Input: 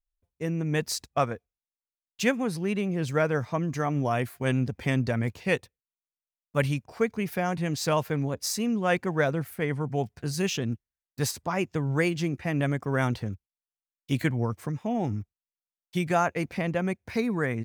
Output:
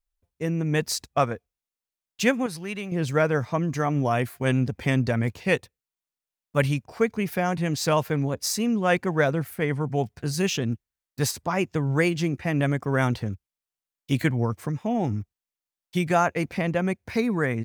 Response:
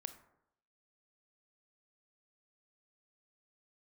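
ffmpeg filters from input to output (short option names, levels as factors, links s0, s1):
-filter_complex "[0:a]asettb=1/sr,asplit=3[s0][s1][s2];[s0]atrim=end=2.464[s3];[s1]atrim=start=2.46:end=2.92,asetpts=PTS-STARTPTS,afade=t=in:d=0.004:c=qsin,afade=t=out:st=0.456:d=0.004:c=qsin,equalizer=f=270:w=0.41:g=-10[s4];[s2]atrim=start=2.916[s5];[s3][s4]acrossfade=d=0.004:c1=hsin:c2=qsin[s6];[s6][s5]acrossfade=d=0.004:c1=qsin:c2=hsin,volume=1.41"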